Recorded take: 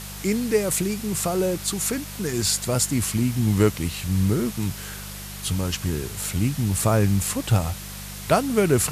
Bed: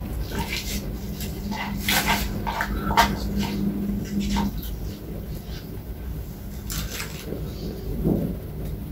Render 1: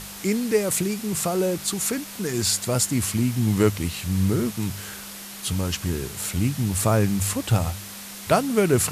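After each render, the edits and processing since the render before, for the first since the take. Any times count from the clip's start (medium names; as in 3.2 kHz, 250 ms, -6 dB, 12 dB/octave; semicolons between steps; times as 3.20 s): de-hum 50 Hz, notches 3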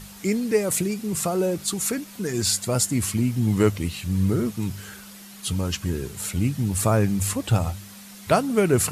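noise reduction 8 dB, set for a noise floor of -38 dBFS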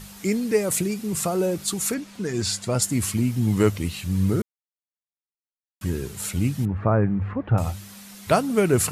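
1.94–2.82 s: distance through air 54 m; 4.42–5.81 s: mute; 6.65–7.58 s: low-pass 1.8 kHz 24 dB/octave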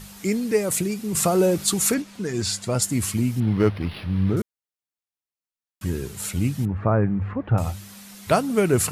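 1.15–2.02 s: gain +4.5 dB; 3.40–4.37 s: decimation joined by straight lines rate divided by 6×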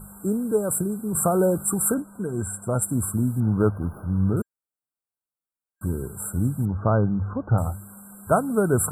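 FFT band-reject 1.6–7.4 kHz; dynamic bell 340 Hz, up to -3 dB, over -31 dBFS, Q 2.2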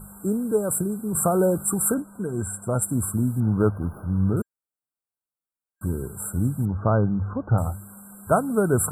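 no audible change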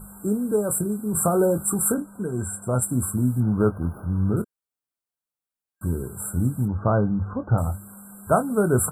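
doubling 24 ms -10 dB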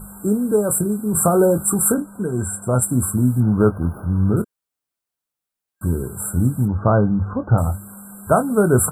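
trim +5 dB; peak limiter -3 dBFS, peak gain reduction 2 dB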